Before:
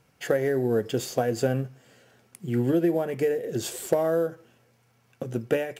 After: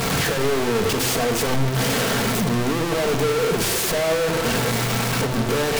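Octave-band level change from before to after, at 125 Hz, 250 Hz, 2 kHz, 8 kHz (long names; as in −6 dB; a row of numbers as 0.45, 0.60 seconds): +8.5, +4.5, +13.5, +14.5 decibels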